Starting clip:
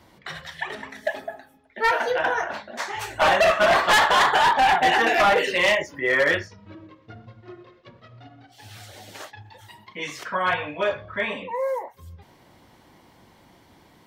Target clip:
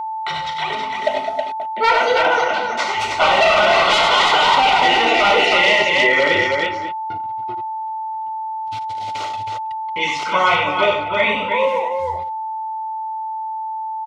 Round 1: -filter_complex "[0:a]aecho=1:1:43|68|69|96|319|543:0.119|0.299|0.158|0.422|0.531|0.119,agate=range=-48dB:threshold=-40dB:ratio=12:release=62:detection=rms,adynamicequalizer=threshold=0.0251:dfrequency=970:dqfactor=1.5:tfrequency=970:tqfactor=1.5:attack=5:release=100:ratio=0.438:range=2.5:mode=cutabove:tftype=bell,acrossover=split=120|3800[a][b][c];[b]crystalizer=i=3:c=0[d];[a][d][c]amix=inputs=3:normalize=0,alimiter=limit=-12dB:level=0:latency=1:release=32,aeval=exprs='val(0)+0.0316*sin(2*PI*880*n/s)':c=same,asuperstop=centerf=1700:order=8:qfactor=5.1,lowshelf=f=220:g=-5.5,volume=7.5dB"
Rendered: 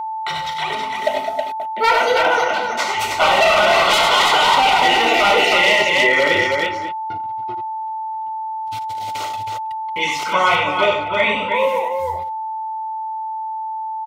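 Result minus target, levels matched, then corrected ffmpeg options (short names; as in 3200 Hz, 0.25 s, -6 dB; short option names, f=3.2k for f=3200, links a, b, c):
8000 Hz band +4.0 dB
-filter_complex "[0:a]aecho=1:1:43|68|69|96|319|543:0.119|0.299|0.158|0.422|0.531|0.119,agate=range=-48dB:threshold=-40dB:ratio=12:release=62:detection=rms,adynamicequalizer=threshold=0.0251:dfrequency=970:dqfactor=1.5:tfrequency=970:tqfactor=1.5:attack=5:release=100:ratio=0.438:range=2.5:mode=cutabove:tftype=bell,lowpass=5.9k,acrossover=split=120|3800[a][b][c];[b]crystalizer=i=3:c=0[d];[a][d][c]amix=inputs=3:normalize=0,alimiter=limit=-12dB:level=0:latency=1:release=32,aeval=exprs='val(0)+0.0316*sin(2*PI*880*n/s)':c=same,asuperstop=centerf=1700:order=8:qfactor=5.1,lowshelf=f=220:g=-5.5,volume=7.5dB"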